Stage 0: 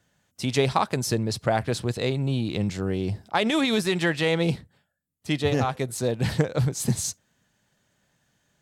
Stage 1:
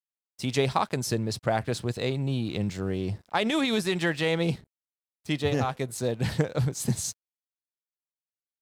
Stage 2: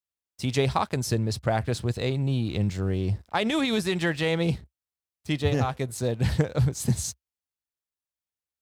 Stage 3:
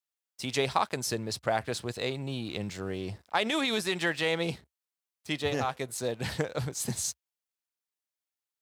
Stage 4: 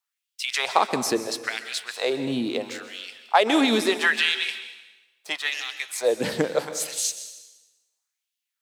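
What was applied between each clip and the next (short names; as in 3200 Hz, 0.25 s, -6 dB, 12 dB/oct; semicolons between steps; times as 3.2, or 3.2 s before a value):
crossover distortion -52 dBFS; gain -2.5 dB
bell 65 Hz +14 dB 1.1 oct
HPF 510 Hz 6 dB/oct
LFO high-pass sine 0.75 Hz 220–3000 Hz; plate-style reverb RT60 1.1 s, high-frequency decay 0.95×, pre-delay 0.115 s, DRR 10.5 dB; gain +5 dB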